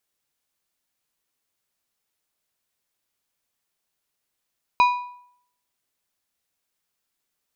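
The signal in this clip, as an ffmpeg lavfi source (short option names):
-f lavfi -i "aevalsrc='0.282*pow(10,-3*t/0.65)*sin(2*PI*983*t)+0.106*pow(10,-3*t/0.494)*sin(2*PI*2457.5*t)+0.0398*pow(10,-3*t/0.429)*sin(2*PI*3932*t)+0.015*pow(10,-3*t/0.401)*sin(2*PI*4915*t)+0.00562*pow(10,-3*t/0.371)*sin(2*PI*6389.5*t)':d=1.55:s=44100"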